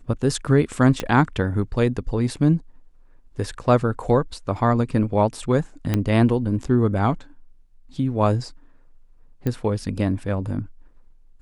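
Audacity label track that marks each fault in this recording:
1.000000	1.000000	click −9 dBFS
5.940000	5.940000	click −8 dBFS
9.470000	9.470000	click −14 dBFS

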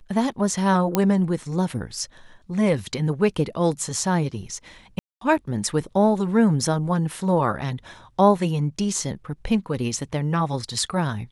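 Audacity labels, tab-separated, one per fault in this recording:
0.950000	0.950000	click −5 dBFS
4.990000	5.210000	drop-out 223 ms

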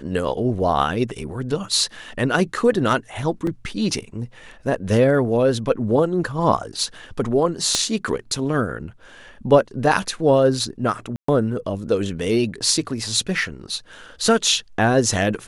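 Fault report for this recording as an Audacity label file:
3.470000	3.470000	drop-out 2.8 ms
7.750000	7.750000	click −6 dBFS
11.160000	11.280000	drop-out 124 ms

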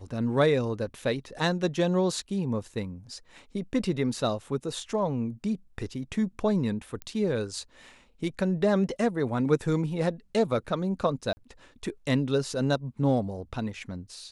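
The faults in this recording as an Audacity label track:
7.020000	7.020000	click −22 dBFS
11.330000	11.370000	drop-out 40 ms

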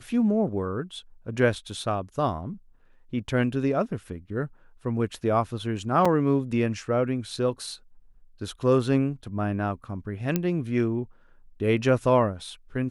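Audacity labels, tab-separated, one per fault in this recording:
6.050000	6.050000	drop-out 4.7 ms
10.360000	10.360000	click −10 dBFS

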